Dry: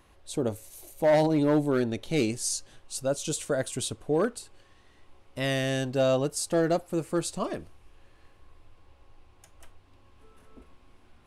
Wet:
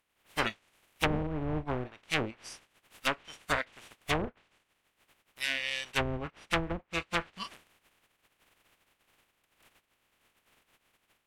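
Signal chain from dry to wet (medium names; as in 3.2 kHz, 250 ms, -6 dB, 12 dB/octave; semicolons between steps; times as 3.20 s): spectral contrast reduction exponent 0.1; spectral noise reduction 21 dB; low-pass that closes with the level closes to 380 Hz, closed at -20.5 dBFS; resonant high shelf 3.7 kHz -7.5 dB, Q 1.5; trim +5.5 dB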